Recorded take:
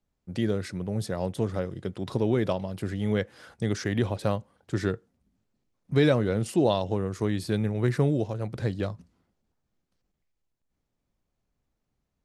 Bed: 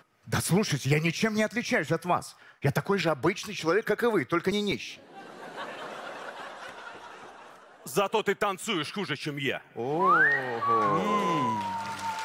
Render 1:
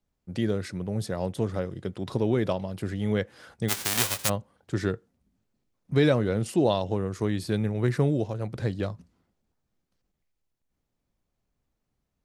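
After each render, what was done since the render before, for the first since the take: 3.68–4.28 spectral whitening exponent 0.1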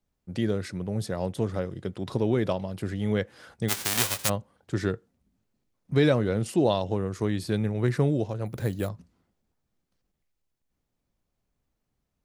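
8.46–8.89 careless resampling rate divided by 4×, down none, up hold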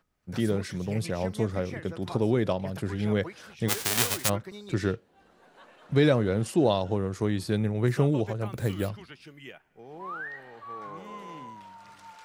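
add bed -15.5 dB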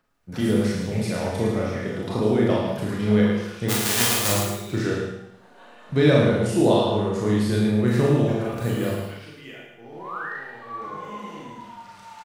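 feedback echo 0.109 s, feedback 32%, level -6 dB; Schroeder reverb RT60 0.61 s, combs from 26 ms, DRR -3 dB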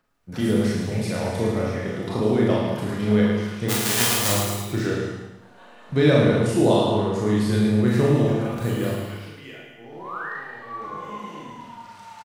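echo 0.217 s -10.5 dB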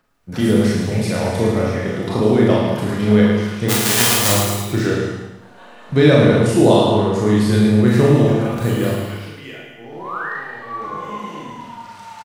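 gain +6 dB; limiter -1 dBFS, peak gain reduction 2 dB

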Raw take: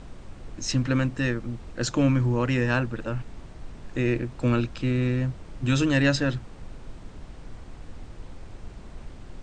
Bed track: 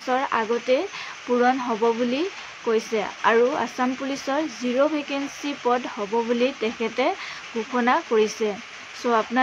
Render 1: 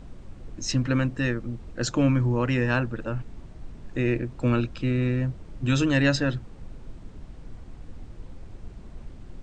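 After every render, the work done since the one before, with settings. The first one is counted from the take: denoiser 6 dB, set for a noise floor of -44 dBFS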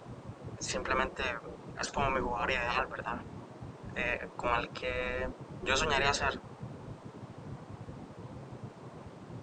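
spectral gate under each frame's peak -15 dB weak; ten-band EQ 125 Hz +10 dB, 500 Hz +4 dB, 1000 Hz +8 dB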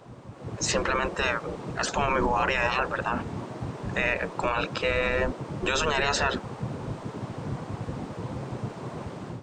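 AGC gain up to 11.5 dB; limiter -15.5 dBFS, peak gain reduction 11.5 dB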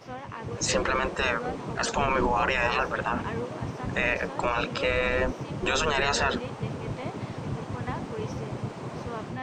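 add bed track -17 dB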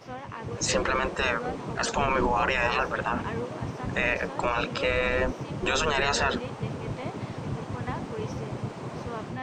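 nothing audible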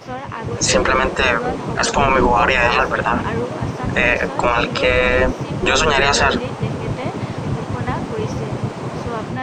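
gain +10.5 dB

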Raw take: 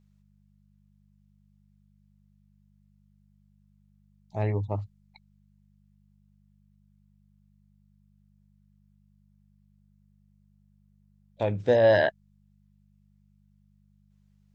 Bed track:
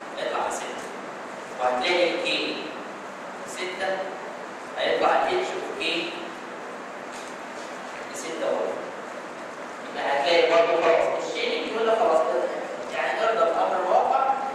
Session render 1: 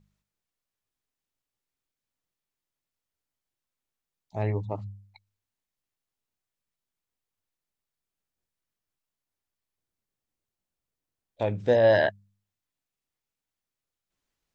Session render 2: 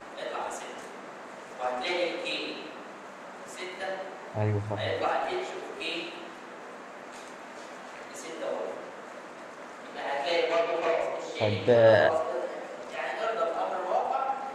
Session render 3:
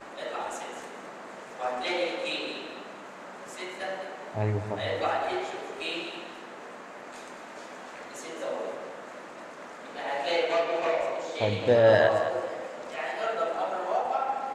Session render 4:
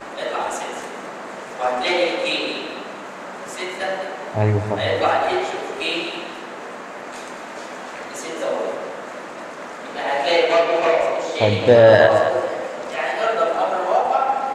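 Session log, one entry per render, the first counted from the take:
de-hum 50 Hz, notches 4
add bed track -7.5 dB
feedback echo 0.213 s, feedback 27%, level -10.5 dB
gain +10 dB; limiter -2 dBFS, peak gain reduction 3 dB

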